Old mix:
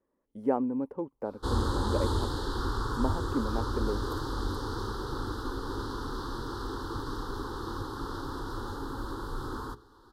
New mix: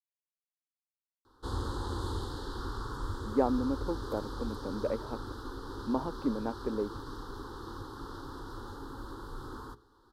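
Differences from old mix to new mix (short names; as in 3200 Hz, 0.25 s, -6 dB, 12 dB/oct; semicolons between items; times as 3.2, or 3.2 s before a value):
speech: entry +2.90 s; background -6.5 dB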